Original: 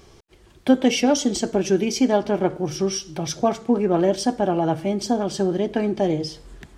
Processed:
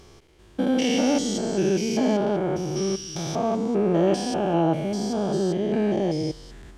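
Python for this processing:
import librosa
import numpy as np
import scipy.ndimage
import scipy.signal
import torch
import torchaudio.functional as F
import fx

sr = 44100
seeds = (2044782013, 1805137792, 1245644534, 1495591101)

y = fx.spec_steps(x, sr, hold_ms=200)
y = fx.peak_eq(y, sr, hz=2600.0, db=8.0, octaves=0.39, at=(4.07, 4.62))
y = F.gain(torch.from_numpy(y), 1.5).numpy()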